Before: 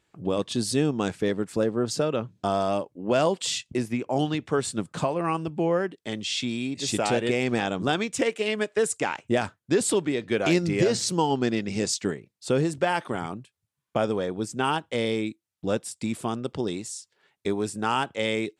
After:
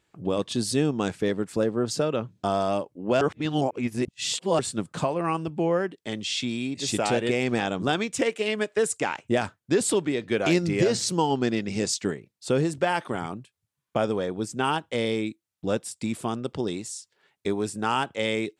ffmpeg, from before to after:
-filter_complex "[0:a]asplit=3[s0][s1][s2];[s0]atrim=end=3.212[s3];[s1]atrim=start=3.208:end=4.592,asetpts=PTS-STARTPTS,areverse[s4];[s2]atrim=start=4.588[s5];[s3][s4]acrossfade=d=0.004:c1=hsin:c2=hsin[s6];[s6][s5]acrossfade=d=0.004:c1=hsin:c2=hsin"

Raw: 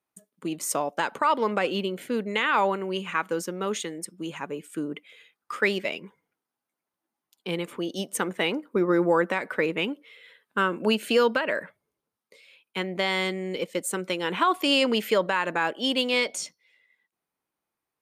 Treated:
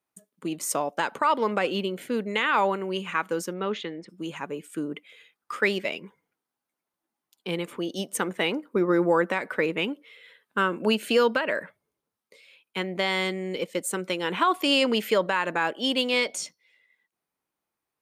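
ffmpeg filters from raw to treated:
-filter_complex "[0:a]asplit=3[s0][s1][s2];[s0]afade=t=out:st=3.53:d=0.02[s3];[s1]lowpass=f=4100:w=0.5412,lowpass=f=4100:w=1.3066,afade=t=in:st=3.53:d=0.02,afade=t=out:st=4.08:d=0.02[s4];[s2]afade=t=in:st=4.08:d=0.02[s5];[s3][s4][s5]amix=inputs=3:normalize=0"

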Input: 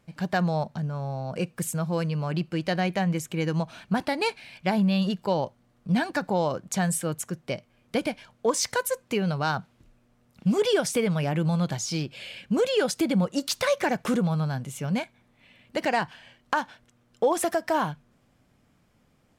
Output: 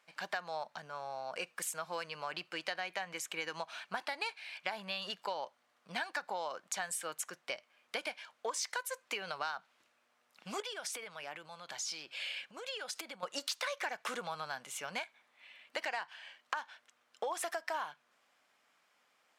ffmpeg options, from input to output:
-filter_complex "[0:a]asettb=1/sr,asplit=3[s0][s1][s2];[s0]atrim=end=10.604[s3];[s1]atrim=start=10.6:end=13.23,asetpts=PTS-STARTPTS,afade=t=in:d=0.004:c=qsin,afade=t=out:st=2.626:d=0.004:c=qsin,acompressor=threshold=0.0251:ratio=16:attack=3.2:release=140:knee=1:detection=peak[s4];[s2]atrim=start=13.226[s5];[s3][s4]acrossfade=d=0.004:c1=hsin:c2=qsin[s6];[s6][s5]acrossfade=d=0.004:c1=qsin:c2=hsin,highpass=970,highshelf=f=8000:g=-8.5,acompressor=threshold=0.0158:ratio=6,volume=1.19"

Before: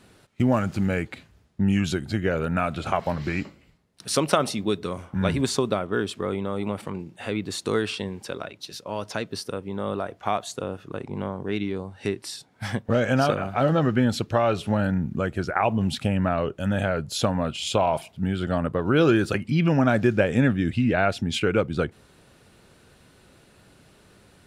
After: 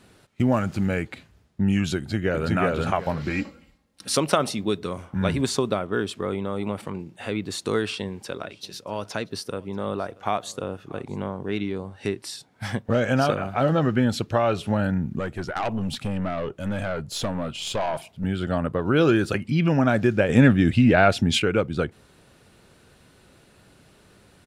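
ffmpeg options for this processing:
-filter_complex "[0:a]asplit=2[s0][s1];[s1]afade=t=in:st=1.97:d=0.01,afade=t=out:st=2.53:d=0.01,aecho=0:1:370|740|1110:0.944061|0.188812|0.0377624[s2];[s0][s2]amix=inputs=2:normalize=0,asettb=1/sr,asplit=3[s3][s4][s5];[s3]atrim=end=3.304[s6];[s4]atrim=start=3.3:end=4.17,asetpts=PTS-STARTPTS,afade=t=in:d=0.004:c=qsin,afade=t=out:st=0.866:d=0.004:c=qsin,aecho=1:1:3.7:0.65,atrim=end_sample=38367[s7];[s5]atrim=start=4.166[s8];[s6][s7]acrossfade=d=0.004:c1=hsin:c2=qsin[s9];[s9][s8]acrossfade=d=0.004:c1=qsin:c2=hsin,asplit=3[s10][s11][s12];[s10]afade=t=out:st=8.42:d=0.02[s13];[s11]aecho=1:1:635:0.0668,afade=t=in:st=8.42:d=0.02,afade=t=out:st=11.95:d=0.02[s14];[s12]afade=t=in:st=11.95:d=0.02[s15];[s13][s14][s15]amix=inputs=3:normalize=0,asettb=1/sr,asplit=3[s16][s17][s18];[s16]atrim=end=15.194[s19];[s17]atrim=start=15.19:end=18.24,asetpts=PTS-STARTPTS,afade=t=in:d=0.004:c=qsin,afade=t=out:st=3.046:d=0.004:c=qsin,aeval=exprs='(tanh(10*val(0)+0.35)-tanh(0.35))/10':c=same[s20];[s18]atrim=start=18.236[s21];[s19][s20]acrossfade=d=0.004:c1=hsin:c2=qsin[s22];[s22][s21]acrossfade=d=0.004:c1=qsin:c2=hsin,asettb=1/sr,asplit=3[s23][s24][s25];[s23]atrim=end=20.294[s26];[s24]atrim=start=20.29:end=21.42,asetpts=PTS-STARTPTS,afade=t=in:d=0.004:c=qsin,afade=t=out:st=1.126:d=0.004:c=qsin,acontrast=39[s27];[s25]atrim=start=21.416[s28];[s26][s27]acrossfade=d=0.004:c1=hsin:c2=qsin[s29];[s29][s28]acrossfade=d=0.004:c1=qsin:c2=hsin"

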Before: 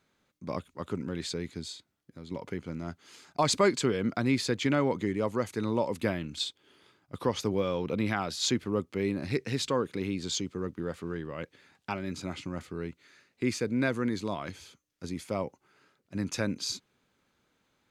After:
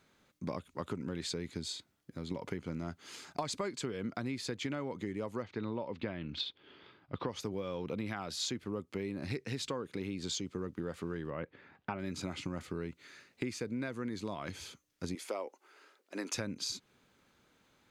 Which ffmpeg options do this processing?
-filter_complex "[0:a]asettb=1/sr,asplit=3[s0][s1][s2];[s0]atrim=end=5.424[s3];[s1]atrim=start=5.42:end=7.29,asetpts=PTS-STARTPTS,afade=t=in:d=0.004:c=qsin,afade=t=out:st=1.866:d=0.004:c=qsin,lowpass=f=4000:w=0.5412,lowpass=f=4000:w=1.3066[s4];[s2]atrim=start=7.286[s5];[s3][s4]acrossfade=d=0.004:c1=hsin:c2=qsin[s6];[s6][s5]acrossfade=d=0.004:c1=qsin:c2=hsin,asettb=1/sr,asplit=3[s7][s8][s9];[s7]atrim=end=11.304[s10];[s8]atrim=start=11.3:end=11.99,asetpts=PTS-STARTPTS,afade=t=in:d=0.004:c=qsin,afade=t=out:st=0.686:d=0.004:c=qsin,lowpass=2000[s11];[s9]atrim=start=11.986[s12];[s10][s11]acrossfade=d=0.004:c1=hsin:c2=qsin[s13];[s13][s12]acrossfade=d=0.004:c1=qsin:c2=hsin,asettb=1/sr,asplit=3[s14][s15][s16];[s14]atrim=end=15.154[s17];[s15]atrim=start=15.15:end=16.34,asetpts=PTS-STARTPTS,afade=t=in:d=0.004:c=qsin,afade=t=out:st=1.186:d=0.004:c=qsin,highpass=f=340:w=0.5412,highpass=f=340:w=1.3066[s18];[s16]atrim=start=16.336[s19];[s17][s18]acrossfade=d=0.004:c1=hsin:c2=qsin[s20];[s20][s19]acrossfade=d=0.004:c1=qsin:c2=hsin,acompressor=threshold=0.0126:ratio=10,volume=1.58"

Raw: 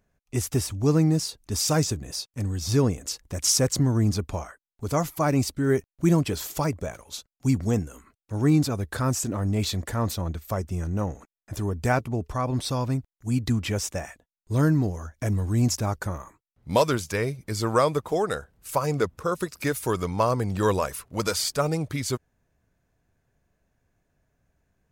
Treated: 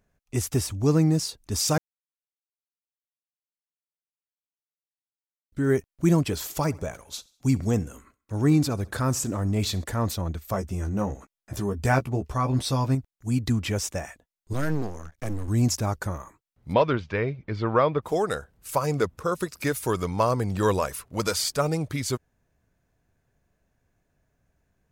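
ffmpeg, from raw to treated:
-filter_complex "[0:a]asettb=1/sr,asplit=3[s0][s1][s2];[s0]atrim=end=6.454[s3];[s1]atrim=start=6.45:end=9.84,asetpts=PTS-STARTPTS,afade=t=in:d=0.004:c=qsin,afade=t=out:st=3.386:d=0.004:c=qsin,aecho=1:1:67|134|201:0.0708|0.0354|0.0177,atrim=end_sample=149499[s4];[s2]atrim=start=9.836[s5];[s3][s4]acrossfade=d=0.004:c1=hsin:c2=qsin[s6];[s6][s5]acrossfade=d=0.004:c1=qsin:c2=hsin,asettb=1/sr,asplit=3[s7][s8][s9];[s7]atrim=end=10.524[s10];[s8]atrim=start=10.52:end=12.95,asetpts=PTS-STARTPTS,afade=t=in:d=0.004:c=qsin,afade=t=out:st=2.426:d=0.004:c=qsin,asplit=2[s11][s12];[s12]adelay=15,volume=0.531[s13];[s11][s13]amix=inputs=2:normalize=0,atrim=end_sample=107163[s14];[s9]atrim=start=12.946[s15];[s10][s14]acrossfade=d=0.004:c1=hsin:c2=qsin[s16];[s16][s15]acrossfade=d=0.004:c1=qsin:c2=hsin,asettb=1/sr,asplit=3[s17][s18][s19];[s17]atrim=end=14.534[s20];[s18]atrim=start=14.53:end=15.48,asetpts=PTS-STARTPTS,afade=t=in:d=0.004:c=qsin,afade=t=out:st=0.946:d=0.004:c=qsin,aeval=exprs='max(val(0),0)':c=same[s21];[s19]atrim=start=15.476[s22];[s20][s21]acrossfade=d=0.004:c1=hsin:c2=qsin[s23];[s23][s22]acrossfade=d=0.004:c1=qsin:c2=hsin,asplit=3[s24][s25][s26];[s24]afade=t=out:st=16.72:d=0.02[s27];[s25]lowpass=f=3300:w=0.5412,lowpass=f=3300:w=1.3066,afade=t=in:st=16.72:d=0.02,afade=t=out:st=18.01:d=0.02[s28];[s26]afade=t=in:st=18.01:d=0.02[s29];[s27][s28][s29]amix=inputs=3:normalize=0,asplit=3[s30][s31][s32];[s30]atrim=end=1.78,asetpts=PTS-STARTPTS,afade=t=out:st=1.776:d=0.004:c=hsin[s33];[s31]atrim=start=1.78:end=5.52,asetpts=PTS-STARTPTS,volume=0[s34];[s32]atrim=start=5.52,asetpts=PTS-STARTPTS,afade=t=in:d=0.004:c=hsin[s35];[s33][s34][s35]concat=n=3:v=0:a=1"

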